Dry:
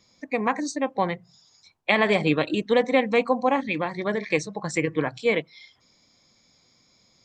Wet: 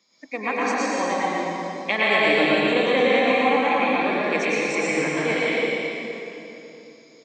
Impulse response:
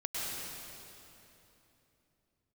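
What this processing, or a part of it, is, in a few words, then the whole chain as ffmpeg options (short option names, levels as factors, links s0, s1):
PA in a hall: -filter_complex "[0:a]highpass=f=200:w=0.5412,highpass=f=200:w=1.3066,equalizer=f=2400:t=o:w=2.6:g=4,aecho=1:1:119:0.562[s0];[1:a]atrim=start_sample=2205[s1];[s0][s1]afir=irnorm=-1:irlink=0,volume=0.668"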